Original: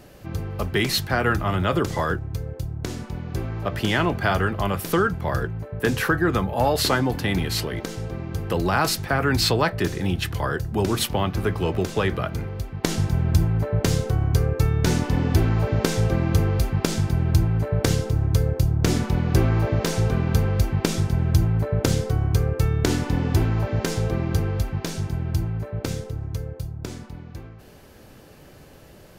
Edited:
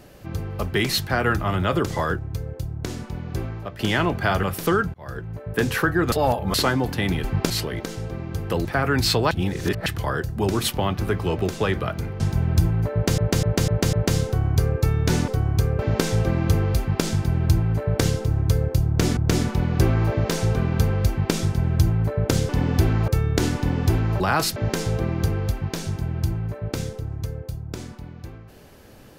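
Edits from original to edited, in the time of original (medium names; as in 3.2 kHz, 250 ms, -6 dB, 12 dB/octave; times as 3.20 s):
3.43–3.79 s: fade out linear, to -14 dB
4.43–4.69 s: delete
5.20–5.68 s: fade in
6.38–6.80 s: reverse
8.65–9.01 s: move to 23.67 s
9.67–10.22 s: reverse
12.56–12.97 s: delete
13.70–13.95 s: loop, 5 plays
15.05–15.64 s: swap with 22.04–22.55 s
16.64–16.90 s: copy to 7.50 s
18.72–19.02 s: loop, 2 plays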